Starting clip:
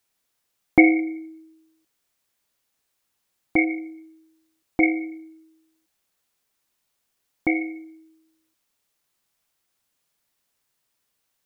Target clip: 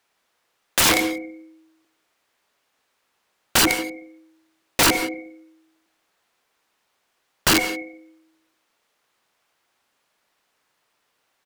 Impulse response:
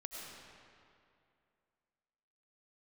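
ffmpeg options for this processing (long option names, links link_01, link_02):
-filter_complex "[0:a]asplit=2[link_01][link_02];[link_02]highpass=frequency=720:poles=1,volume=17dB,asoftclip=type=tanh:threshold=-1.5dB[link_03];[link_01][link_03]amix=inputs=2:normalize=0,lowpass=frequency=1400:poles=1,volume=-6dB,asplit=2[link_04][link_05];[link_05]adelay=117,lowpass=frequency=950:poles=1,volume=-7dB,asplit=2[link_06][link_07];[link_07]adelay=117,lowpass=frequency=950:poles=1,volume=0.3,asplit=2[link_08][link_09];[link_09]adelay=117,lowpass=frequency=950:poles=1,volume=0.3,asplit=2[link_10][link_11];[link_11]adelay=117,lowpass=frequency=950:poles=1,volume=0.3[link_12];[link_04][link_06][link_08][link_10][link_12]amix=inputs=5:normalize=0,aeval=exprs='(mod(5.01*val(0)+1,2)-1)/5.01':channel_layout=same,asplit=2[link_13][link_14];[1:a]atrim=start_sample=2205,atrim=end_sample=6174,asetrate=33075,aresample=44100[link_15];[link_14][link_15]afir=irnorm=-1:irlink=0,volume=-2.5dB[link_16];[link_13][link_16]amix=inputs=2:normalize=0"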